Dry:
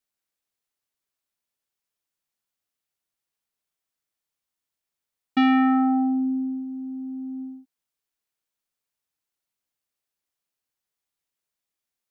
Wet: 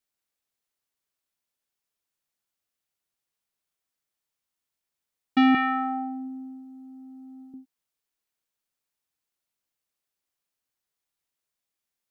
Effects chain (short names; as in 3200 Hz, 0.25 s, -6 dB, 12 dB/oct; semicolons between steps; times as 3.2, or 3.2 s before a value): 5.54–7.54 comb 5.6 ms, depth 92%